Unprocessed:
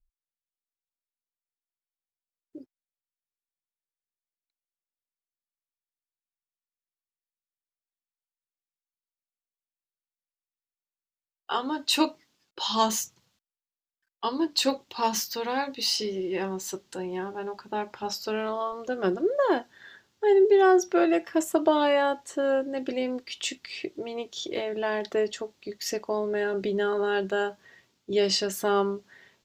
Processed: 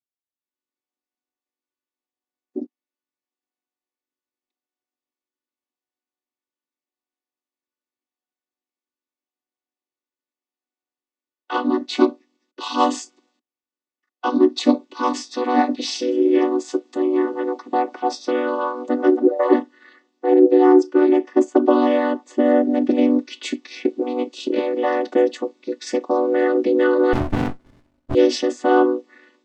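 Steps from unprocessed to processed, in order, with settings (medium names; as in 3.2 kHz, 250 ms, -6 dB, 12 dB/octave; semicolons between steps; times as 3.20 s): vocoder on a held chord minor triad, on B3; level rider gain up to 14 dB; 27.13–28.15 s: sliding maximum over 65 samples; trim -1 dB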